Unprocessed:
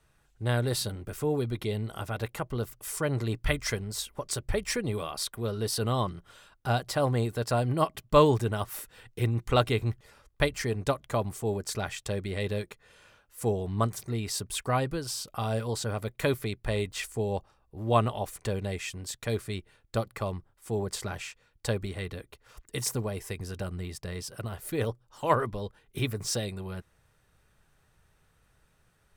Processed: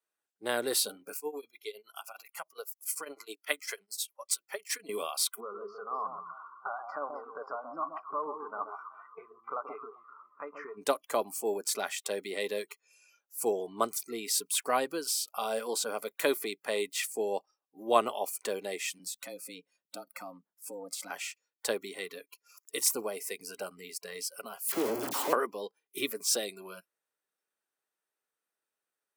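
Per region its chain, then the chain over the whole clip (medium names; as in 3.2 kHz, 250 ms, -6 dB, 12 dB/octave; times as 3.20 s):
1.14–4.89 s: bass shelf 390 Hz -10 dB + tremolo triangle 9.8 Hz, depth 95%
5.40–10.77 s: compression 12:1, threshold -35 dBFS + resonant low-pass 1.2 kHz + echo whose repeats swap between lows and highs 131 ms, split 1 kHz, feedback 59%, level -4.5 dB
18.99–21.10 s: compression 4:1, threshold -38 dBFS + frequency shift +87 Hz
24.68–25.33 s: one-bit comparator + tilt shelf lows +7.5 dB, about 660 Hz + phase dispersion lows, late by 49 ms, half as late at 1.3 kHz
whole clip: spectral noise reduction 21 dB; high-pass 290 Hz 24 dB/octave; treble shelf 9 kHz +11 dB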